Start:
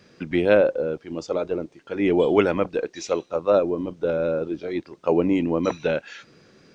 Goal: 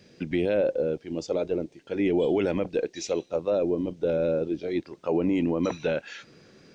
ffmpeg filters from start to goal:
-af "asetnsamples=n=441:p=0,asendcmd='4.82 equalizer g -2.5',equalizer=f=1.2k:w=1.6:g=-10.5,alimiter=limit=-16.5dB:level=0:latency=1:release=40"

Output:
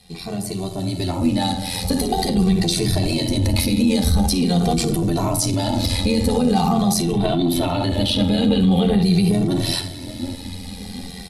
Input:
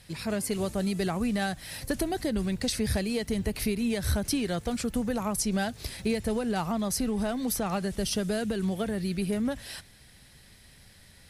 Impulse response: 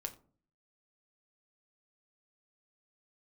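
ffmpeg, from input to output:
-filter_complex "[0:a]asettb=1/sr,asplit=3[a][b][c];[a]atrim=end=6.984[d];[b]atrim=start=6.98:end=9.02,asetpts=PTS-STARTPTS,afade=t=in:d=0.004:c=qsin,afade=t=out:st=2.036:d=0.004:c=qsin,highshelf=f=4.4k:t=q:w=3:g=-8[e];[c]atrim=start=9.016[f];[d][e]acrossfade=d=0.004:c1=hsin:c2=qsin[g];[g][f]acrossfade=d=0.004:c1=qsin:c2=hsin,asplit=2[h][i];[i]adelay=753,lowpass=f=830:p=1,volume=-22.5dB,asplit=2[j][k];[k]adelay=753,lowpass=f=830:p=1,volume=0.54,asplit=2[l][m];[m]adelay=753,lowpass=f=830:p=1,volume=0.54,asplit=2[n][o];[o]adelay=753,lowpass=f=830:p=1,volume=0.54[p];[h][j][l][n][p]amix=inputs=5:normalize=0[q];[1:a]atrim=start_sample=2205,atrim=end_sample=6174,asetrate=24255,aresample=44100[r];[q][r]afir=irnorm=-1:irlink=0,acrossover=split=260|3000[s][t][u];[t]acompressor=threshold=-31dB:ratio=6[v];[s][v][u]amix=inputs=3:normalize=0,equalizer=f=100:t=o:w=0.33:g=11,equalizer=f=250:t=o:w=0.33:g=6,equalizer=f=800:t=o:w=0.33:g=9,equalizer=f=1.6k:t=o:w=0.33:g=-10,equalizer=f=4k:t=o:w=0.33:g=8,tremolo=f=87:d=0.889,asoftclip=type=tanh:threshold=-14dB,dynaudnorm=f=670:g=5:m=16.5dB,alimiter=level_in=12dB:limit=-1dB:release=50:level=0:latency=1,asplit=2[w][x];[x]adelay=2.1,afreqshift=-0.45[y];[w][y]amix=inputs=2:normalize=1,volume=-5dB"

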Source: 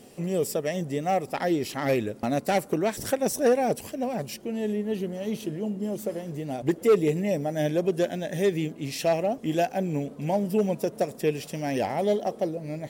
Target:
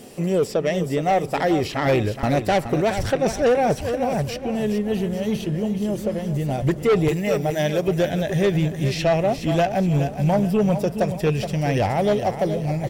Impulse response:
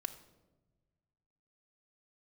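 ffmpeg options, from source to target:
-filter_complex "[0:a]asettb=1/sr,asplit=3[a][b][c];[a]atrim=end=7.084[d];[b]atrim=start=7.08:end=7.88,asetpts=PTS-STARTPTS,afade=t=in:d=0.004:c=qsin,afade=t=out:st=0.796:d=0.004:c=qsin,aemphasis=mode=production:type=bsi[e];[c]atrim=start=7.876[f];[d][e]acrossfade=d=0.004:c1=hsin:c2=qsin[g];[g][f]acrossfade=d=0.004:c1=qsin:c2=hsin,aecho=1:1:421|842|1263|1684:0.299|0.11|0.0409|0.0151,acrossover=split=5300[h][i];[i]acompressor=threshold=-54dB:ratio=6[j];[h][j]amix=inputs=2:normalize=0,asubboost=boost=9:cutoff=90,aeval=exprs='0.224*sin(PI/2*1.58*val(0)/0.224)':c=same"

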